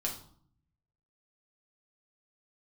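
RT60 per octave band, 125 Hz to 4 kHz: 1.2, 0.90, 0.55, 0.60, 0.40, 0.40 s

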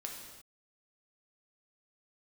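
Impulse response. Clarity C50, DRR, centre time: 3.0 dB, -0.5 dB, 52 ms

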